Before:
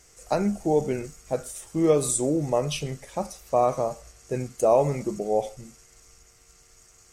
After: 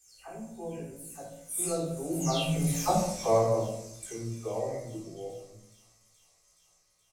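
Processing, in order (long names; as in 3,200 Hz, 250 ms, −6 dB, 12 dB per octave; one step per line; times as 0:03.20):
every frequency bin delayed by itself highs early, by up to 383 ms
source passing by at 0:02.91, 30 m/s, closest 5.5 metres
high-shelf EQ 3,000 Hz +10 dB
double-tracking delay 18 ms −2 dB
on a send: delay with a high-pass on its return 423 ms, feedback 76%, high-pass 2,400 Hz, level −18.5 dB
on the sum: rectangular room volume 1,900 cubic metres, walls furnished, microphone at 3.7 metres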